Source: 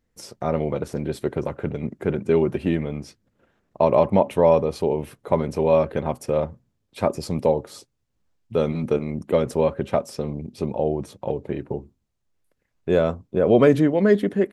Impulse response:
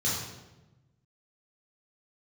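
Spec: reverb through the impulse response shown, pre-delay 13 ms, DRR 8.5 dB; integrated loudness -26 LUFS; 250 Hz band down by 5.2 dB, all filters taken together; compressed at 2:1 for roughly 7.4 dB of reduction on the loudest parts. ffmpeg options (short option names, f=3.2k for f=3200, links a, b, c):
-filter_complex "[0:a]equalizer=f=250:t=o:g=-7.5,acompressor=threshold=-27dB:ratio=2,asplit=2[a][b];[1:a]atrim=start_sample=2205,adelay=13[c];[b][c]afir=irnorm=-1:irlink=0,volume=-17dB[d];[a][d]amix=inputs=2:normalize=0,volume=3dB"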